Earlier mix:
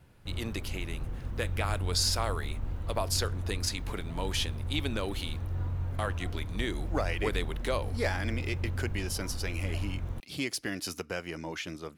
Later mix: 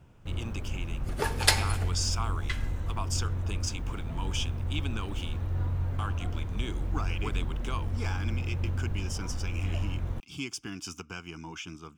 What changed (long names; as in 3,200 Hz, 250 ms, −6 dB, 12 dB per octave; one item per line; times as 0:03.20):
speech: add phaser with its sweep stopped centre 2,800 Hz, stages 8
first sound +3.0 dB
second sound: unmuted
reverb: on, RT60 1.5 s